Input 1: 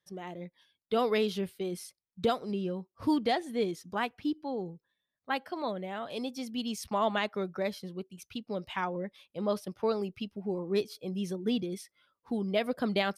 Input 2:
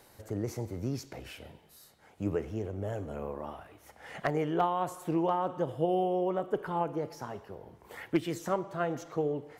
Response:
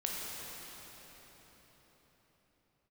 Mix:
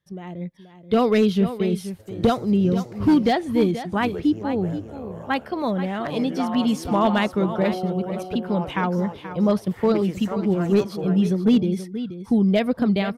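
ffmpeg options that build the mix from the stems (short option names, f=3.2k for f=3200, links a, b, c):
-filter_complex "[0:a]bass=f=250:g=12,treble=f=4k:g=-5,dynaudnorm=f=110:g=9:m=6dB,volume=1.5dB,asplit=2[a][b];[b]volume=-12dB[c];[1:a]adelay=1800,volume=-1.5dB,asplit=2[d][e];[e]volume=-5.5dB[f];[c][f]amix=inputs=2:normalize=0,aecho=0:1:480:1[g];[a][d][g]amix=inputs=3:normalize=0,asoftclip=type=hard:threshold=-10.5dB"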